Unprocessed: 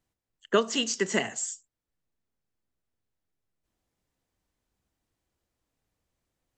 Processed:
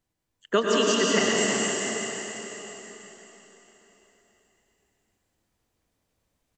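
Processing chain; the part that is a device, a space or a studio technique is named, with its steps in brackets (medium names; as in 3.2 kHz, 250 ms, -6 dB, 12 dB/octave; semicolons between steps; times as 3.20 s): cave (delay 337 ms -8.5 dB; reverberation RT60 4.2 s, pre-delay 92 ms, DRR -4 dB)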